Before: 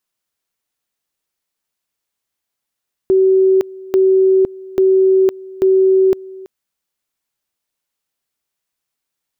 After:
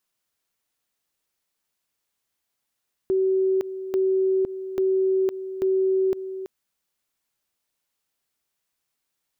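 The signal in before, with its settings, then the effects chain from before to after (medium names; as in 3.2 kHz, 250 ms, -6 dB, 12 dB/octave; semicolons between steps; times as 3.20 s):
two-level tone 380 Hz -8 dBFS, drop 21.5 dB, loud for 0.51 s, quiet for 0.33 s, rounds 4
peak limiter -18 dBFS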